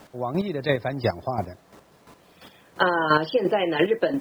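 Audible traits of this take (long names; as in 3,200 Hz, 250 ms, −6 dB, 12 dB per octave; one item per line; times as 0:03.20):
a quantiser's noise floor 10 bits, dither none
chopped level 2.9 Hz, depth 60%, duty 20%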